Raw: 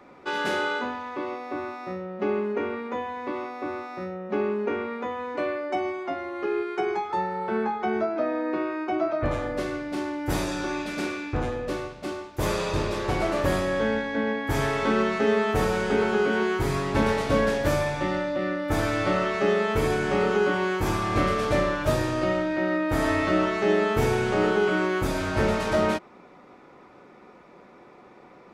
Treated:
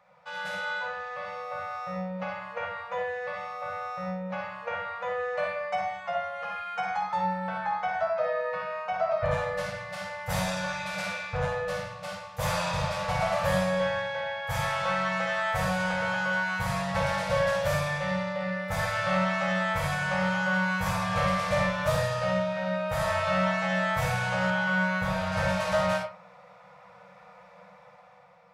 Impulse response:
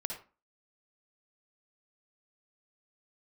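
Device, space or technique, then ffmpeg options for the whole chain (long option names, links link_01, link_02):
far laptop microphone: -filter_complex "[1:a]atrim=start_sample=2205[link_01];[0:a][link_01]afir=irnorm=-1:irlink=0,highpass=frequency=110:poles=1,dynaudnorm=framelen=220:gausssize=9:maxgain=9dB,asettb=1/sr,asplit=3[link_02][link_03][link_04];[link_02]atrim=end=24.504[link_05];[link_03]atrim=start=24.5:end=25.32,asetpts=PTS-STARTPTS,afade=type=in:duration=0.004:curve=qsin,afade=type=out:start_time=0.816:duration=0.004:curve=qsin,acrossover=split=4300[link_06][link_07];[link_07]acompressor=threshold=-44dB:ratio=4:attack=1:release=60[link_08];[link_06][link_08]amix=inputs=2:normalize=0[link_09];[link_04]atrim=start=25.316[link_10];[link_05][link_09]acrossfade=duration=0.004:curve1=hsin:curve2=qsin[link_11];[link_11][link_10]acrossfade=duration=0.004:curve1=qsin:curve2=hsin,afftfilt=real='re*(1-between(b*sr/4096,200,470))':imag='im*(1-between(b*sr/4096,200,470))':win_size=4096:overlap=0.75,volume=-8.5dB"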